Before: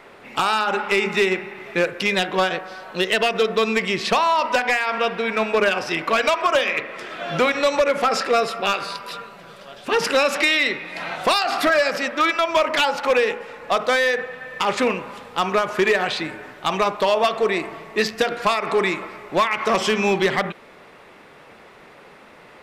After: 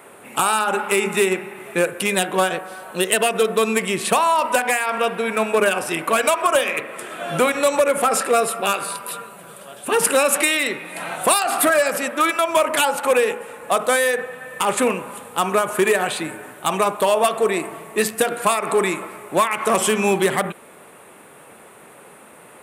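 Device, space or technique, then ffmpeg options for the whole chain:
budget condenser microphone: -af "highpass=95,equalizer=f=2k:w=4.5:g=-4,highshelf=f=7k:t=q:w=3:g=12,volume=1.5dB"

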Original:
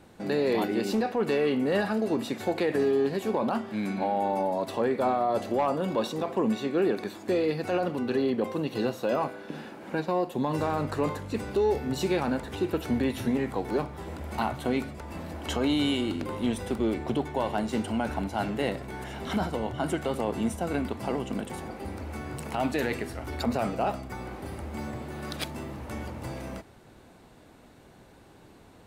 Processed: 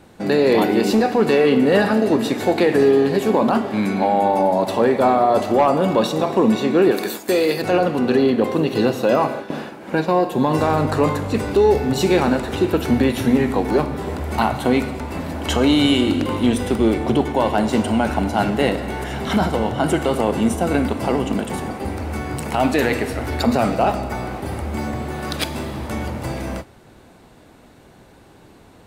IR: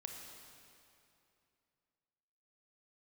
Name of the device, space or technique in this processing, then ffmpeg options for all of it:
keyed gated reverb: -filter_complex "[0:a]asplit=3[a][b][c];[1:a]atrim=start_sample=2205[d];[b][d]afir=irnorm=-1:irlink=0[e];[c]apad=whole_len=1272840[f];[e][f]sidechaingate=range=-33dB:threshold=-40dB:ratio=16:detection=peak,volume=1dB[g];[a][g]amix=inputs=2:normalize=0,asettb=1/sr,asplit=3[h][i][j];[h]atrim=end=6.914[k];[i]atrim=start=6.91:end=7.62,asetpts=PTS-STARTPTS,afade=t=in:d=0.004:c=qsin,afade=t=out:st=0.706:d=0.004:c=qsin,aemphasis=mode=production:type=bsi[l];[j]atrim=start=7.616[m];[k][l]acrossfade=d=0.004:c1=hsin:c2=qsin[n];[n][m]acrossfade=d=0.004:c1=qsin:c2=hsin,volume=6dB"

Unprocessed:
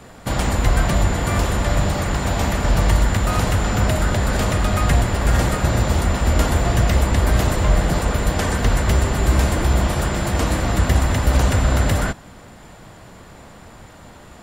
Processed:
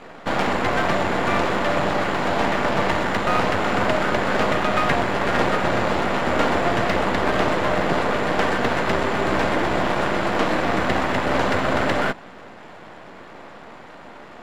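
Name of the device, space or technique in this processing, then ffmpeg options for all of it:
crystal radio: -af "highpass=270,lowpass=2.7k,aeval=exprs='if(lt(val(0),0),0.251*val(0),val(0))':c=same,volume=7.5dB"

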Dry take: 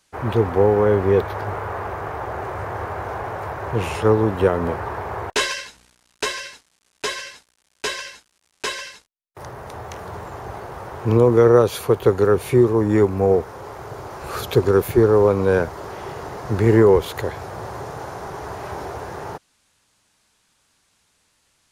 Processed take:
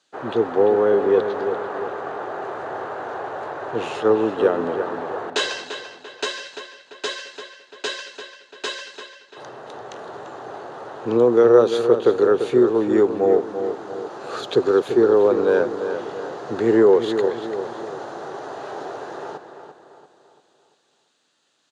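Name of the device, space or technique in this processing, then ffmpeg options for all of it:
television speaker: -filter_complex "[0:a]highpass=f=180:w=0.5412,highpass=f=180:w=1.3066,equalizer=f=190:t=q:w=4:g=-9,equalizer=f=1k:t=q:w=4:g=-5,equalizer=f=2.2k:t=q:w=4:g=-9,equalizer=f=3.8k:t=q:w=4:g=3,equalizer=f=5.4k:t=q:w=4:g=-7,lowpass=f=6.9k:w=0.5412,lowpass=f=6.9k:w=1.3066,asplit=2[a][b];[b]adelay=342,lowpass=f=4k:p=1,volume=-8.5dB,asplit=2[c][d];[d]adelay=342,lowpass=f=4k:p=1,volume=0.46,asplit=2[e][f];[f]adelay=342,lowpass=f=4k:p=1,volume=0.46,asplit=2[g][h];[h]adelay=342,lowpass=f=4k:p=1,volume=0.46,asplit=2[i][j];[j]adelay=342,lowpass=f=4k:p=1,volume=0.46[k];[a][c][e][g][i][k]amix=inputs=6:normalize=0"

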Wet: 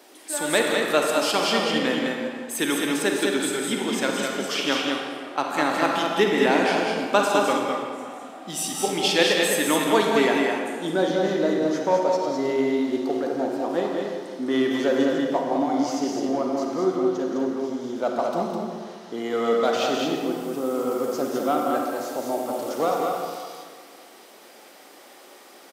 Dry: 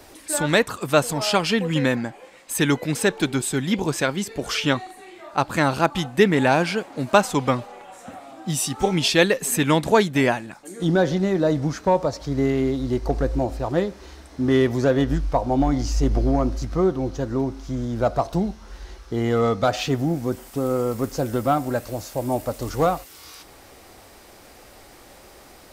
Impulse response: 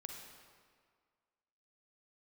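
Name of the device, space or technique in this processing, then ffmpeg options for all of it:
stadium PA: -filter_complex "[0:a]highpass=f=230:w=0.5412,highpass=f=230:w=1.3066,equalizer=f=3.2k:t=o:w=0.27:g=4,aecho=1:1:172|207:0.316|0.631[a];[1:a]atrim=start_sample=2205[b];[a][b]afir=irnorm=-1:irlink=0,volume=1.5dB"

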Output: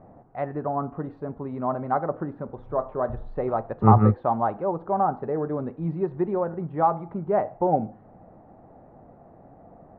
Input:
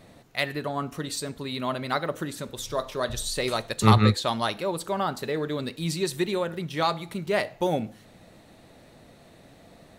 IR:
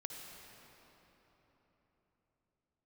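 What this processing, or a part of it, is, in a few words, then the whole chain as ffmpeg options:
under water: -af "lowpass=f=1.2k:w=0.5412,lowpass=f=1.2k:w=1.3066,equalizer=f=770:t=o:w=0.27:g=8.5,volume=1.5dB"

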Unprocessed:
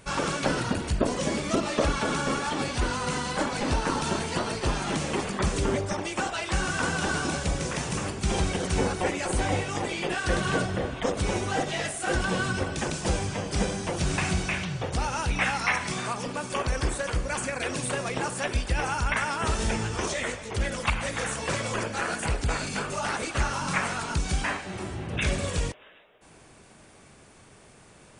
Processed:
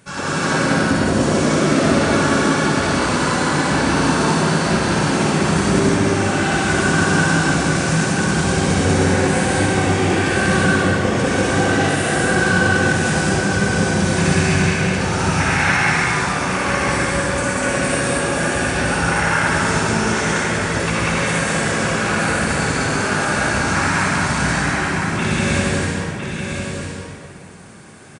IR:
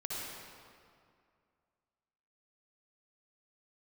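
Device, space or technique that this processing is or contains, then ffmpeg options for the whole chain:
stadium PA: -filter_complex "[0:a]highpass=190,bass=f=250:g=13,treble=f=4k:g=4,equalizer=f=1.6k:t=o:w=0.54:g=6,aecho=1:1:192.4|250.7:0.891|0.355[a];[1:a]atrim=start_sample=2205[b];[a][b]afir=irnorm=-1:irlink=0,aecho=1:1:1007:0.473,volume=2dB"

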